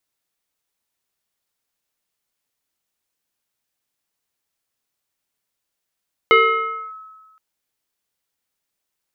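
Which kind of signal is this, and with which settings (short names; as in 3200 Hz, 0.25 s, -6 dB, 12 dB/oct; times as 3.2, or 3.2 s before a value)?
FM tone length 1.07 s, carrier 1290 Hz, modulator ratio 0.65, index 1.4, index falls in 0.62 s linear, decay 1.42 s, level -7 dB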